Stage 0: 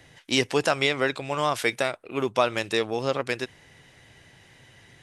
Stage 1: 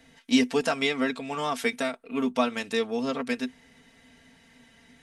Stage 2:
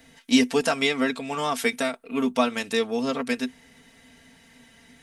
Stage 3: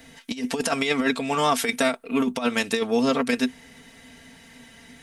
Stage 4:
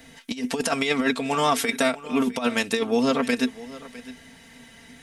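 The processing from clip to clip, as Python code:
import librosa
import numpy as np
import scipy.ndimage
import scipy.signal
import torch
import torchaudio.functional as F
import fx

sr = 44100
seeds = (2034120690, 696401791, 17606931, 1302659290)

y1 = fx.peak_eq(x, sr, hz=250.0, db=13.5, octaves=0.21)
y1 = fx.notch(y1, sr, hz=380.0, q=12.0)
y1 = y1 + 0.76 * np.pad(y1, (int(4.4 * sr / 1000.0), 0))[:len(y1)]
y1 = F.gain(torch.from_numpy(y1), -5.5).numpy()
y2 = fx.high_shelf(y1, sr, hz=9000.0, db=8.5)
y2 = F.gain(torch.from_numpy(y2), 2.5).numpy()
y3 = fx.over_compress(y2, sr, threshold_db=-24.0, ratio=-0.5)
y3 = F.gain(torch.from_numpy(y3), 3.0).numpy()
y4 = y3 + 10.0 ** (-18.0 / 20.0) * np.pad(y3, (int(656 * sr / 1000.0), 0))[:len(y3)]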